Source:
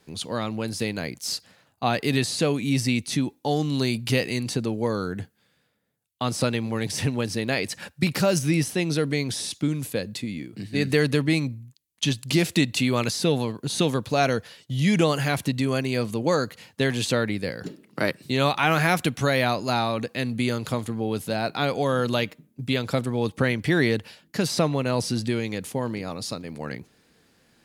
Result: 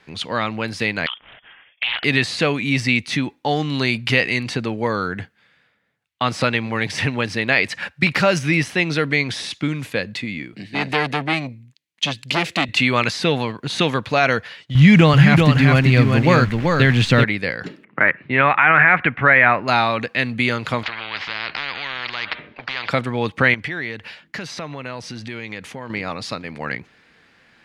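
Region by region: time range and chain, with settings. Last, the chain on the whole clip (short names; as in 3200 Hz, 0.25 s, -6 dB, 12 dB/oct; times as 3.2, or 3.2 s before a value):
1.06–2.04 compressor 3:1, threshold -30 dBFS + inverted band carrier 3400 Hz + Doppler distortion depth 0.47 ms
10.53–12.69 HPF 140 Hz + bell 1200 Hz -6.5 dB 1.5 oct + core saturation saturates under 1000 Hz
14.75–17.24 level-crossing sampler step -37.5 dBFS + tone controls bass +13 dB, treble 0 dB + echo 0.384 s -4 dB
17.84–19.68 LPF 2300 Hz 24 dB/oct + dynamic EQ 1800 Hz, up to +7 dB, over -38 dBFS, Q 1.2
20.83–22.89 steep low-pass 4100 Hz + compressor 1.5:1, threshold -34 dBFS + spectral compressor 10:1
23.54–25.9 dynamic EQ 6100 Hz, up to +6 dB, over -53 dBFS, Q 7.2 + compressor 3:1, threshold -34 dBFS
whole clip: EQ curve 410 Hz 0 dB, 2100 Hz +12 dB, 13000 Hz -14 dB; maximiser +3 dB; gain -1 dB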